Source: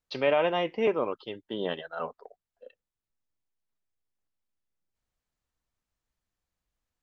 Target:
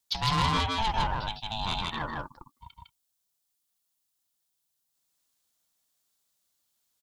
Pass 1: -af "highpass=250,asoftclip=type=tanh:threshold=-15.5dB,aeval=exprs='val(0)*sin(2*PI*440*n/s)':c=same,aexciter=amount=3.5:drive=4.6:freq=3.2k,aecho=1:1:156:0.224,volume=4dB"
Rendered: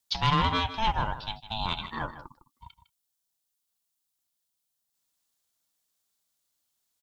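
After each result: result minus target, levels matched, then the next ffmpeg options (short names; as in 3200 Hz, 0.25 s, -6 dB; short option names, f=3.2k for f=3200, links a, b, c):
echo-to-direct -11.5 dB; soft clip: distortion -11 dB
-af "highpass=250,asoftclip=type=tanh:threshold=-15.5dB,aeval=exprs='val(0)*sin(2*PI*440*n/s)':c=same,aexciter=amount=3.5:drive=4.6:freq=3.2k,aecho=1:1:156:0.841,volume=4dB"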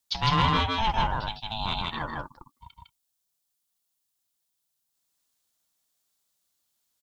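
soft clip: distortion -11 dB
-af "highpass=250,asoftclip=type=tanh:threshold=-24dB,aeval=exprs='val(0)*sin(2*PI*440*n/s)':c=same,aexciter=amount=3.5:drive=4.6:freq=3.2k,aecho=1:1:156:0.841,volume=4dB"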